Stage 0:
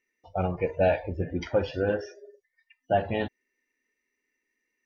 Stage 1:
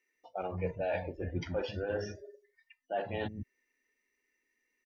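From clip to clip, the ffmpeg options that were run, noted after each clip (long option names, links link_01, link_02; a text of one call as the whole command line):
ffmpeg -i in.wav -filter_complex "[0:a]areverse,acompressor=threshold=-31dB:ratio=6,areverse,acrossover=split=240[link_01][link_02];[link_01]adelay=150[link_03];[link_03][link_02]amix=inputs=2:normalize=0" out.wav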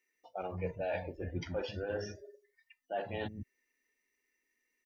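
ffmpeg -i in.wav -af "highshelf=frequency=4900:gain=5,volume=-2.5dB" out.wav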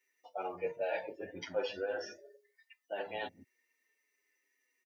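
ffmpeg -i in.wav -filter_complex "[0:a]highpass=370,asplit=2[link_01][link_02];[link_02]adelay=7.5,afreqshift=-0.67[link_03];[link_01][link_03]amix=inputs=2:normalize=1,volume=5dB" out.wav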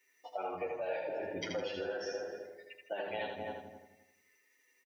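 ffmpeg -i in.wav -filter_complex "[0:a]asplit=2[link_01][link_02];[link_02]adelay=260,lowpass=frequency=940:poles=1,volume=-6dB,asplit=2[link_03][link_04];[link_04]adelay=260,lowpass=frequency=940:poles=1,volume=0.21,asplit=2[link_05][link_06];[link_06]adelay=260,lowpass=frequency=940:poles=1,volume=0.21[link_07];[link_03][link_05][link_07]amix=inputs=3:normalize=0[link_08];[link_01][link_08]amix=inputs=2:normalize=0,acompressor=threshold=-43dB:ratio=5,asplit=2[link_09][link_10];[link_10]aecho=0:1:80|160|240|320|400:0.596|0.214|0.0772|0.0278|0.01[link_11];[link_09][link_11]amix=inputs=2:normalize=0,volume=6.5dB" out.wav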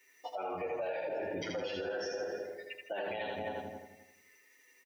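ffmpeg -i in.wav -af "alimiter=level_in=12dB:limit=-24dB:level=0:latency=1:release=93,volume=-12dB,volume=7dB" out.wav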